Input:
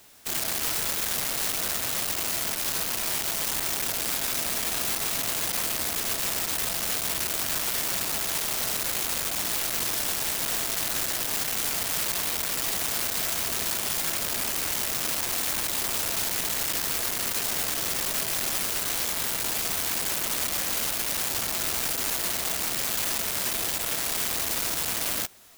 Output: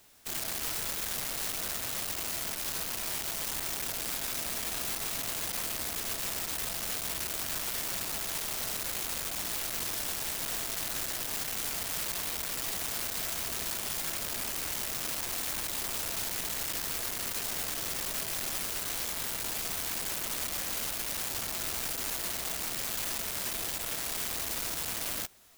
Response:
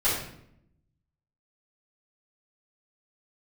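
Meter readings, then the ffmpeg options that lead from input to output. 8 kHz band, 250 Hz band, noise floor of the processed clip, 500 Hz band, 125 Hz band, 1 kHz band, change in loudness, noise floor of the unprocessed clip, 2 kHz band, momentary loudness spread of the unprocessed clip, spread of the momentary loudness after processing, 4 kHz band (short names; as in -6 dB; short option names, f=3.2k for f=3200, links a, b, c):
-6.5 dB, -6.0 dB, -37 dBFS, -6.5 dB, -5.0 dB, -6.5 dB, -6.5 dB, -31 dBFS, -6.5 dB, 1 LU, 1 LU, -6.5 dB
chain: -af "lowshelf=f=66:g=6,volume=-6.5dB"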